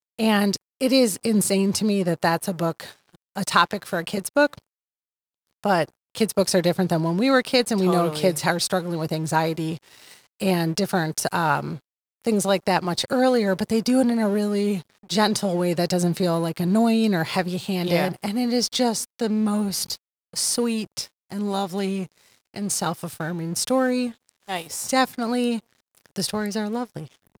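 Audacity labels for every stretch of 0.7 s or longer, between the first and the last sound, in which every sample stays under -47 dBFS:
4.590000	5.640000	silence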